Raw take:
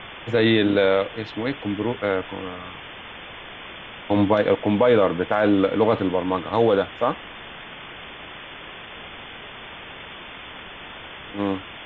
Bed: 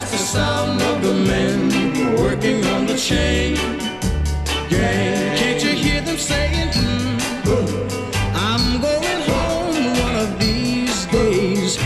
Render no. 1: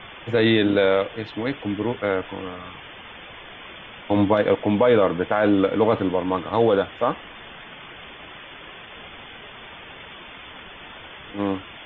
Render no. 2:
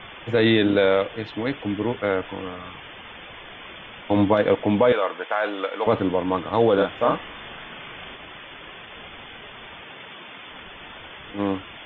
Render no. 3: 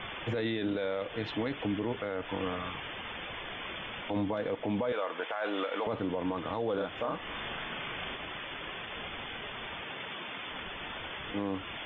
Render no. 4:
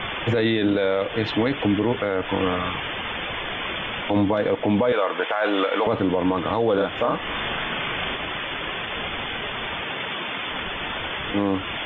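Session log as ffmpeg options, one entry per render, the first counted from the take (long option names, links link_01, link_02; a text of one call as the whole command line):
ffmpeg -i in.wav -af "afftdn=noise_reduction=6:noise_floor=-39" out.wav
ffmpeg -i in.wav -filter_complex "[0:a]asettb=1/sr,asplit=3[link_01][link_02][link_03];[link_01]atrim=end=4.924[link_04];[link_02]atrim=start=4.92:end=5.87,asetpts=PTS-STARTPTS,afade=type=in:duration=0.004:curve=qsin,afade=type=out:start_time=0.946:duration=0.004:curve=qsin,highpass=700[link_05];[link_03]atrim=start=5.866[link_06];[link_04][link_05]acrossfade=duration=0.004:curve1=hsin:curve2=qsin[link_07];[link_07][link_06]acrossfade=duration=0.004:curve1=qsin:curve2=hsin,asettb=1/sr,asplit=3[link_08][link_09][link_10];[link_08]atrim=end=6.744[link_11];[link_09]atrim=start=6.74:end=8.16,asetpts=PTS-STARTPTS,afade=type=in:duration=0.004:curve=qsin,afade=type=out:start_time=1.416:duration=0.004:curve=qsin,asplit=2[link_12][link_13];[link_13]adelay=38,volume=-2dB[link_14];[link_12][link_14]amix=inputs=2:normalize=0,atrim=end_sample=62622[link_15];[link_10]atrim=start=8.156[link_16];[link_11][link_15]acrossfade=duration=0.004:curve1=hsin:curve2=qsin[link_17];[link_17][link_16]acrossfade=duration=0.004:curve1=qsin:curve2=hsin,asettb=1/sr,asplit=3[link_18][link_19][link_20];[link_18]atrim=end=9.834[link_21];[link_19]atrim=start=9.83:end=10.52,asetpts=PTS-STARTPTS,afade=type=in:duration=0.004:curve=qsin,afade=type=out:start_time=0.686:duration=0.004:curve=qsin,highpass=120[link_22];[link_20]atrim=start=10.516[link_23];[link_21][link_22]acrossfade=duration=0.004:curve1=hsin:curve2=qsin[link_24];[link_24][link_23]acrossfade=duration=0.004:curve1=qsin:curve2=hsin" out.wav
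ffmpeg -i in.wav -af "acompressor=threshold=-26dB:ratio=6,alimiter=limit=-23.5dB:level=0:latency=1:release=19" out.wav
ffmpeg -i in.wav -af "volume=11.5dB" out.wav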